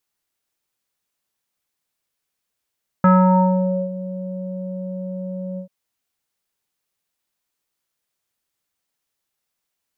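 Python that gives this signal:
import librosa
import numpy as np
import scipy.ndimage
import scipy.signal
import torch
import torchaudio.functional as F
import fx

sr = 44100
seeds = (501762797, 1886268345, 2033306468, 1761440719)

y = fx.sub_voice(sr, note=54, wave='square', cutoff_hz=500.0, q=3.7, env_oct=1.5, env_s=0.88, attack_ms=3.2, decay_s=0.84, sustain_db=-17.5, release_s=0.1, note_s=2.54, slope=24)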